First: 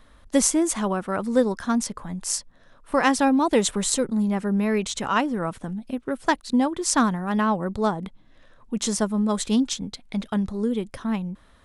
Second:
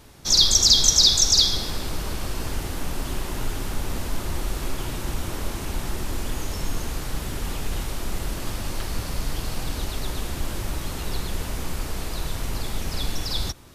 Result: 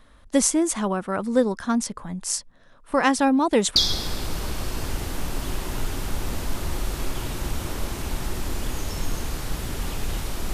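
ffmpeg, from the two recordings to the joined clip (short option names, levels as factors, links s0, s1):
-filter_complex "[0:a]apad=whole_dur=10.53,atrim=end=10.53,atrim=end=3.762[s0];[1:a]atrim=start=1.388:end=8.16[s1];[s0][s1]acrossfade=d=0.004:c1=hsin:c2=hsin"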